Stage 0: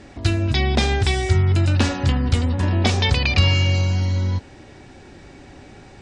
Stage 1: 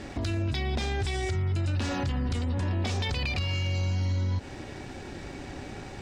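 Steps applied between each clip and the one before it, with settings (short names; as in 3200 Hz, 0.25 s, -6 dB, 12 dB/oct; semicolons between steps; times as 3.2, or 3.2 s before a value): compressor, threshold -22 dBFS, peak gain reduction 11 dB; sample leveller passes 1; limiter -22.5 dBFS, peak gain reduction 11 dB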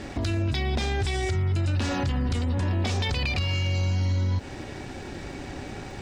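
crackle 91/s -53 dBFS; gain +3 dB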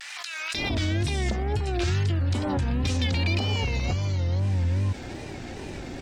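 bands offset in time highs, lows 0.54 s, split 1300 Hz; wow and flutter 120 cents; backwards sustainer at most 24 dB/s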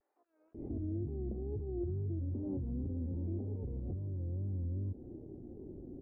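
ladder low-pass 450 Hz, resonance 40%; gain -5 dB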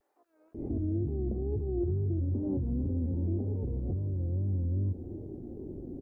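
echo 0.359 s -16.5 dB; gain +6.5 dB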